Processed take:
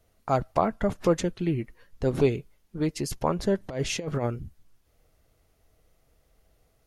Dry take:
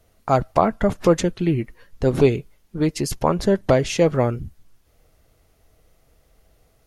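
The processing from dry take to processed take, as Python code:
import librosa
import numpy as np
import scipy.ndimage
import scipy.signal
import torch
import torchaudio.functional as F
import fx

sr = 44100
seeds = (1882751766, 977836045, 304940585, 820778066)

y = fx.over_compress(x, sr, threshold_db=-20.0, ratio=-0.5, at=(3.6, 4.25), fade=0.02)
y = F.gain(torch.from_numpy(y), -6.5).numpy()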